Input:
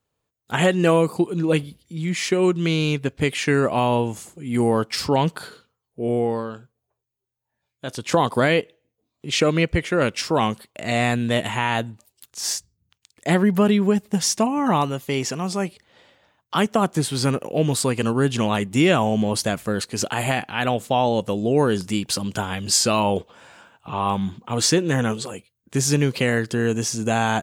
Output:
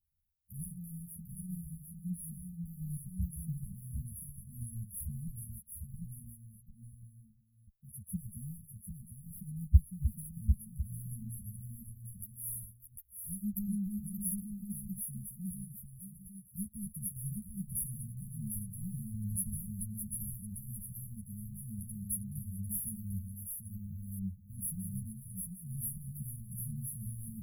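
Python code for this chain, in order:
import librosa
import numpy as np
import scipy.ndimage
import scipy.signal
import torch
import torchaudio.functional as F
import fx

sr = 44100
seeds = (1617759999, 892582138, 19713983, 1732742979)

p1 = fx.reverse_delay(x, sr, ms=330, wet_db=-10)
p2 = fx.tone_stack(p1, sr, knobs='10-0-10')
p3 = 10.0 ** (-25.5 / 20.0) * np.tanh(p2 / 10.0 ** (-25.5 / 20.0))
p4 = p2 + (p3 * 10.0 ** (-11.0 / 20.0))
p5 = fx.quant_float(p4, sr, bits=4)
p6 = fx.brickwall_bandstop(p5, sr, low_hz=210.0, high_hz=10000.0)
p7 = fx.high_shelf(p6, sr, hz=4200.0, db=-10.0)
p8 = p7 + 0.52 * np.pad(p7, (int(3.7 * sr / 1000.0), 0))[:len(p7)]
p9 = p8 + 10.0 ** (-4.5 / 20.0) * np.pad(p8, (int(749 * sr / 1000.0), 0))[:len(p8)]
p10 = fx.hpss(p9, sr, part='harmonic', gain_db=-8)
p11 = fx.ensemble(p10, sr)
y = p11 * 10.0 ** (13.5 / 20.0)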